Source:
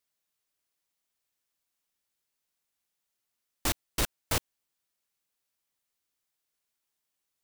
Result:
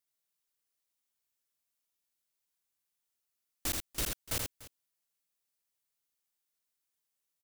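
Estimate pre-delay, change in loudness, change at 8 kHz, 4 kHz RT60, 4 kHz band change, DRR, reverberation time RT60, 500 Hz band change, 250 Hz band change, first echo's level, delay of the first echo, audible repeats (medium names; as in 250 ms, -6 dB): no reverb, -3.5 dB, -2.0 dB, no reverb, -4.0 dB, no reverb, no reverb, -7.0 dB, -6.0 dB, -3.5 dB, 81 ms, 2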